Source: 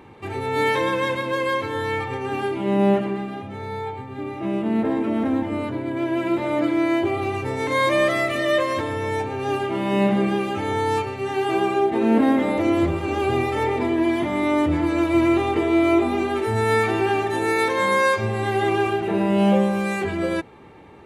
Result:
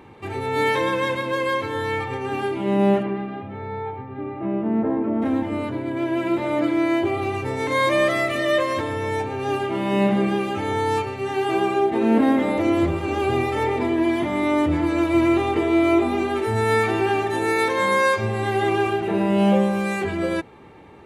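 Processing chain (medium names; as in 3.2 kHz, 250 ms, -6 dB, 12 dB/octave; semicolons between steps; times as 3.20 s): 3.02–5.21 s: low-pass 3 kHz -> 1.2 kHz 12 dB/octave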